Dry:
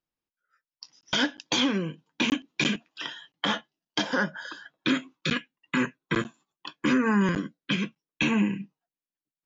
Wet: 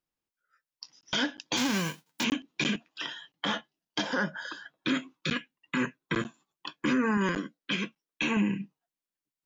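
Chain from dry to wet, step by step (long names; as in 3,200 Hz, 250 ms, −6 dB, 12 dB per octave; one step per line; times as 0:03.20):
0:01.56–0:02.23: spectral envelope flattened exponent 0.3
0:07.17–0:08.37: parametric band 98 Hz −15 dB 1.5 octaves
brickwall limiter −18.5 dBFS, peak gain reduction 6.5 dB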